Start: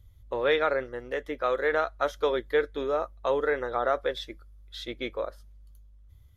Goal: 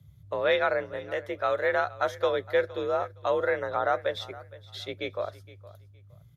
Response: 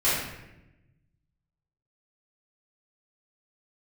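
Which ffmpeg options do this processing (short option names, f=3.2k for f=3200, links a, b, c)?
-af "aecho=1:1:465|930:0.112|0.0258,afreqshift=50"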